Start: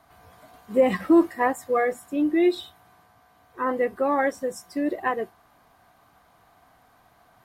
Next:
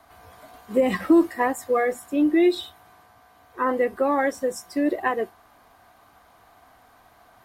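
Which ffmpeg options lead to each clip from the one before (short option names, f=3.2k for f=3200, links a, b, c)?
-filter_complex "[0:a]acrossover=split=310|3000[a][b][c];[b]acompressor=threshold=-23dB:ratio=6[d];[a][d][c]amix=inputs=3:normalize=0,equalizer=f=150:t=o:w=0.74:g=-7.5,volume=4dB"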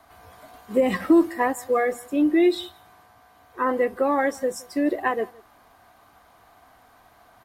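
-filter_complex "[0:a]asplit=2[a][b];[b]adelay=169.1,volume=-24dB,highshelf=f=4k:g=-3.8[c];[a][c]amix=inputs=2:normalize=0"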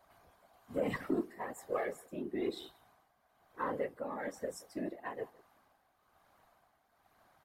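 -af "tremolo=f=1.1:d=0.57,asoftclip=type=tanh:threshold=-12dB,afftfilt=real='hypot(re,im)*cos(2*PI*random(0))':imag='hypot(re,im)*sin(2*PI*random(1))':win_size=512:overlap=0.75,volume=-6.5dB"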